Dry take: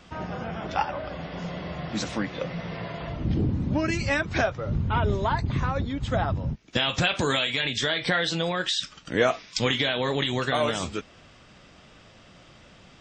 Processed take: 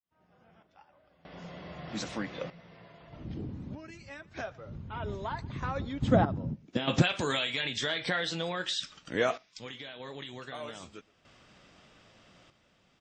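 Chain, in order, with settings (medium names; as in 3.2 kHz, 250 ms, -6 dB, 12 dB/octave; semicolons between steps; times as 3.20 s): fade-in on the opening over 1.86 s; bass shelf 110 Hz -6 dB; echo from a far wall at 20 m, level -23 dB; random-step tremolo 1.6 Hz, depth 90%; 6.02–7.02 s: peaking EQ 240 Hz +14.5 dB 2.9 oct; trim -5.5 dB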